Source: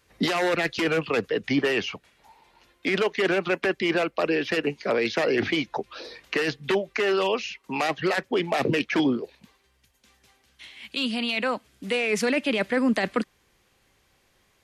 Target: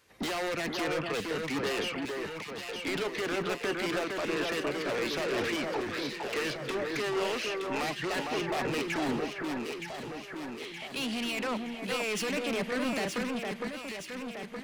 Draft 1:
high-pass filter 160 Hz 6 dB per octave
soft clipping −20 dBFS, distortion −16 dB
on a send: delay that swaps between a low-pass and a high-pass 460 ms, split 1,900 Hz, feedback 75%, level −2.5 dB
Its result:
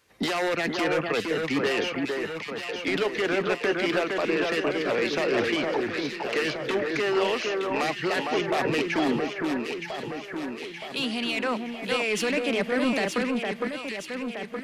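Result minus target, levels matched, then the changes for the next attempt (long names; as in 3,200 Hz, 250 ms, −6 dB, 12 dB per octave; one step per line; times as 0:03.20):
soft clipping: distortion −9 dB
change: soft clipping −30.5 dBFS, distortion −7 dB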